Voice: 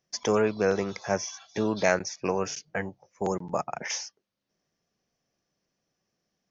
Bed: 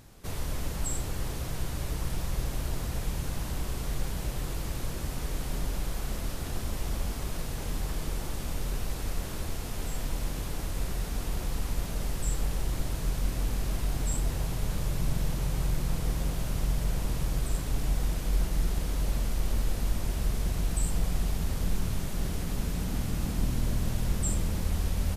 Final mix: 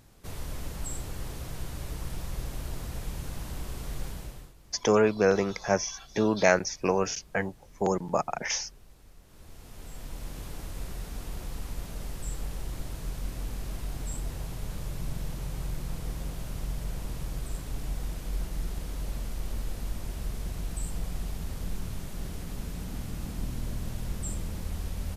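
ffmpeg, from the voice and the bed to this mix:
-filter_complex "[0:a]adelay=4600,volume=2dB[a];[1:a]volume=12.5dB,afade=t=out:st=4.07:d=0.46:silence=0.125893,afade=t=in:st=9.25:d=1.2:silence=0.149624[b];[a][b]amix=inputs=2:normalize=0"

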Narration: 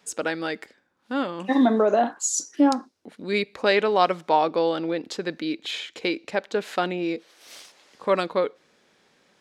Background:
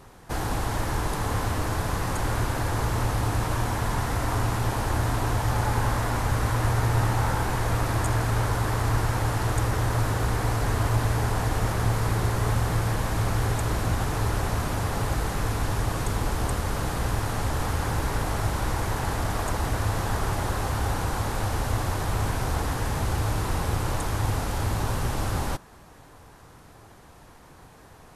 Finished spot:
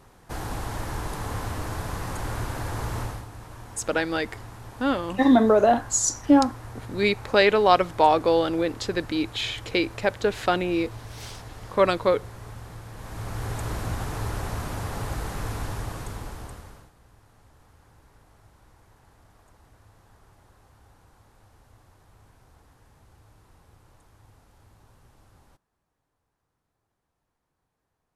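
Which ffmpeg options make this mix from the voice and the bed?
-filter_complex "[0:a]adelay=3700,volume=2dB[a];[1:a]volume=7.5dB,afade=t=out:st=2.99:d=0.27:silence=0.251189,afade=t=in:st=12.91:d=0.74:silence=0.251189,afade=t=out:st=15.57:d=1.34:silence=0.0530884[b];[a][b]amix=inputs=2:normalize=0"

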